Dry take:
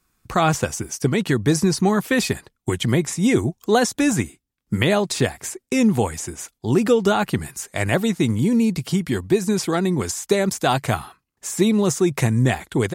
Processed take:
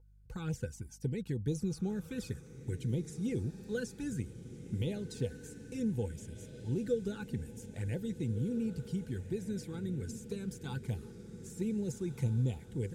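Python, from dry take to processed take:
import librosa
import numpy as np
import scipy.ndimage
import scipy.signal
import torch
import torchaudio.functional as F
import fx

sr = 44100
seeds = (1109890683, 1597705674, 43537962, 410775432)

p1 = fx.tone_stack(x, sr, knobs='10-0-1')
p2 = fx.add_hum(p1, sr, base_hz=50, snr_db=22)
p3 = fx.env_flanger(p2, sr, rest_ms=2.3, full_db=-30.5)
p4 = fx.small_body(p3, sr, hz=(490.0, 860.0, 1500.0), ring_ms=50, db=15)
y = p4 + fx.echo_diffused(p4, sr, ms=1613, feedback_pct=52, wet_db=-12, dry=0)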